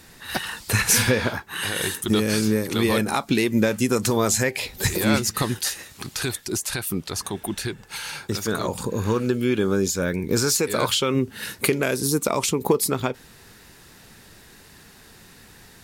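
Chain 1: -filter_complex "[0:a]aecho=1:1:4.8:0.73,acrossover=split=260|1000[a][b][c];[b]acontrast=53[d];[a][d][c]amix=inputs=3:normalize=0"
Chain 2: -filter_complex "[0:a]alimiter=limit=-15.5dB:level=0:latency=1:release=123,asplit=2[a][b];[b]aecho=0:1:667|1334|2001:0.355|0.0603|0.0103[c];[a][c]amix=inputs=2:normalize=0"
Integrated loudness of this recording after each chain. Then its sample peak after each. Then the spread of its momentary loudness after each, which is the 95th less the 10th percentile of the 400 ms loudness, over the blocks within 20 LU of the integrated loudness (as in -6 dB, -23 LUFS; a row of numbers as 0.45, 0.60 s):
-18.5, -26.5 LUFS; -1.0, -13.0 dBFS; 10, 16 LU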